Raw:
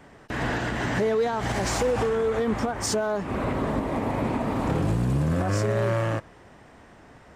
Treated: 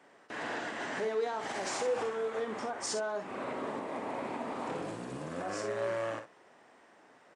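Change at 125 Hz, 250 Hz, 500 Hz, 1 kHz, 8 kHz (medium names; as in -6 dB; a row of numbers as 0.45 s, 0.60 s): -24.0 dB, -14.5 dB, -8.5 dB, -7.5 dB, -7.5 dB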